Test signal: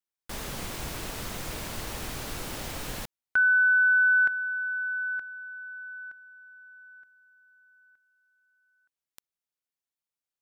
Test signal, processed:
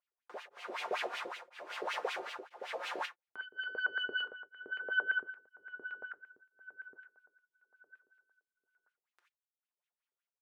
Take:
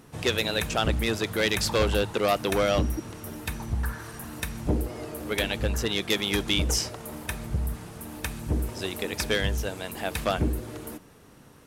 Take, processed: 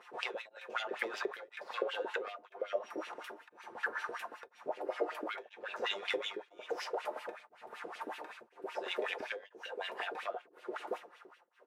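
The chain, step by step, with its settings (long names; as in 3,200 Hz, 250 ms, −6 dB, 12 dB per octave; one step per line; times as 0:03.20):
stylus tracing distortion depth 0.097 ms
brickwall limiter −17.5 dBFS
pitch vibrato 0.64 Hz 16 cents
comb filter 5.7 ms, depth 50%
auto-filter high-pass saw up 8.8 Hz 430–1,800 Hz
dynamic equaliser 540 Hz, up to +5 dB, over −41 dBFS, Q 1.1
downward compressor 6 to 1, threshold −31 dBFS
low-shelf EQ 140 Hz +9.5 dB
reverb whose tail is shaped and stops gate 110 ms falling, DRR 6 dB
auto-filter band-pass sine 5.3 Hz 330–3,000 Hz
tremolo along a rectified sine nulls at 1 Hz
level +5 dB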